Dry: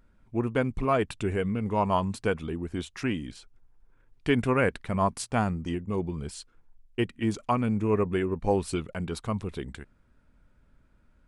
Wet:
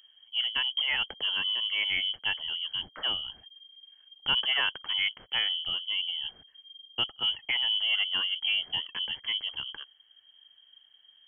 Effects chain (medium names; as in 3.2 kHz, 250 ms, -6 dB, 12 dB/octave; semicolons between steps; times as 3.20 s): peaking EQ 640 Hz -13.5 dB 0.58 oct; in parallel at -5 dB: saturation -26 dBFS, distortion -11 dB; on the sum: frequency inversion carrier 3.2 kHz; trim -4 dB